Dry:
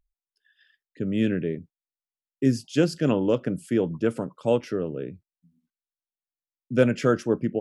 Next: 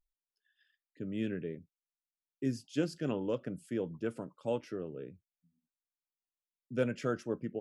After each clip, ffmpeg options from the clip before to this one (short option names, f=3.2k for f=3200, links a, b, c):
-af "flanger=delay=1.3:depth=2.4:regen=79:speed=0.56:shape=triangular,volume=-7dB"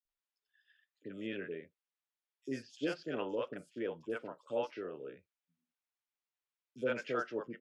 -filter_complex "[0:a]acrossover=split=370 5300:gain=0.141 1 0.158[a][b][c];[a][b][c]amix=inputs=3:normalize=0,acrossover=split=560|4700[d][e][f];[d]adelay=50[g];[e]adelay=90[h];[g][h][f]amix=inputs=3:normalize=0,volume=3.5dB"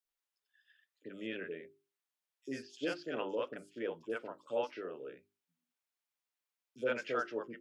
-af "lowshelf=f=180:g=-9,bandreject=f=50:t=h:w=6,bandreject=f=100:t=h:w=6,bandreject=f=150:t=h:w=6,bandreject=f=200:t=h:w=6,bandreject=f=250:t=h:w=6,bandreject=f=300:t=h:w=6,bandreject=f=350:t=h:w=6,bandreject=f=400:t=h:w=6,volume=1.5dB"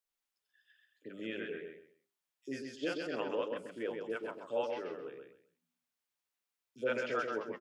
-af "aecho=1:1:131|262|393:0.562|0.135|0.0324"